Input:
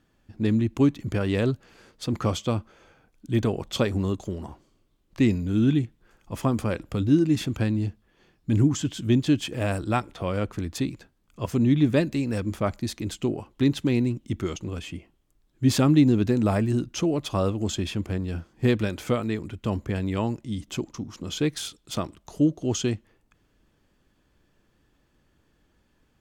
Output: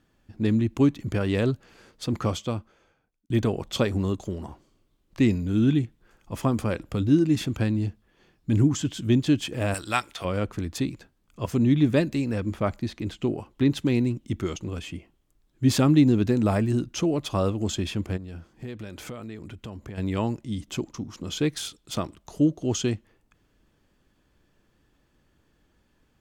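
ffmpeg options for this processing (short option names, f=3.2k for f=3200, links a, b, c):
-filter_complex "[0:a]asettb=1/sr,asplit=3[a][b][c];[a]atrim=end=9.744[d];[b]atrim=start=9.74:end=10.25,asetpts=PTS-STARTPTS,afade=t=in:d=0.004:c=qsin,afade=t=out:st=0.506:d=0.004:c=qsin,tiltshelf=f=970:g=-10[e];[c]atrim=start=10.246[f];[d][e]acrossfade=d=0.004:c1=hsin:c2=qsin[g];[g][f]acrossfade=d=0.004:c1=qsin:c2=hsin,asettb=1/sr,asplit=3[h][i][j];[h]atrim=end=12.304[k];[i]atrim=start=12.3:end=13.7,asetpts=PTS-STARTPTS,afade=t=in:d=0.004:c=qsin,afade=t=out:st=1.396:d=0.004:c=qsin,acrossover=split=3900[l][m];[m]acompressor=threshold=-53dB:ratio=4:attack=1:release=60[n];[l][n]amix=inputs=2:normalize=0[o];[j]atrim=start=13.696[p];[k][o]acrossfade=d=0.004:c1=hsin:c2=qsin[q];[q][p]acrossfade=d=0.004:c1=qsin:c2=hsin,asplit=3[r][s][t];[r]afade=t=out:st=18.16:d=0.02[u];[s]acompressor=threshold=-36dB:ratio=4:attack=3.2:release=140:knee=1:detection=peak,afade=t=in:st=18.16:d=0.02,afade=t=out:st=19.97:d=0.02[v];[t]afade=t=in:st=19.97:d=0.02[w];[u][v][w]amix=inputs=3:normalize=0,asplit=2[x][y];[x]atrim=end=3.3,asetpts=PTS-STARTPTS,afade=t=out:st=2.14:d=1.16[z];[y]atrim=start=3.3,asetpts=PTS-STARTPTS,afade=t=in:d=0.004:c=hsin[aa];[z][aa]concat=n=2:v=0:a=1"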